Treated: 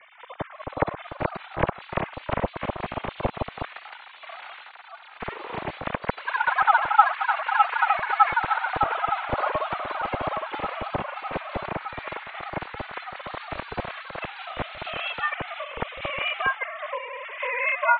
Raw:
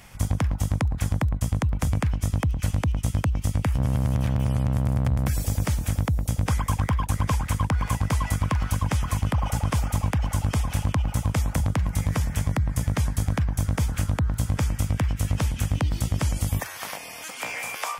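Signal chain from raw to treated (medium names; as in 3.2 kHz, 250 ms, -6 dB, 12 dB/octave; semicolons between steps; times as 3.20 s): formants replaced by sine waves; high-pass 580 Hz 6 dB/octave; tilt shelf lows +8 dB, about 930 Hz; ring modulator 240 Hz; peaking EQ 2.1 kHz +5 dB 0.3 oct; feedback echo behind a high-pass 984 ms, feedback 76%, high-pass 1.8 kHz, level -16 dB; ever faster or slower copies 518 ms, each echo +2 st, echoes 2; harmonic-percussive split percussive -10 dB; trim +3.5 dB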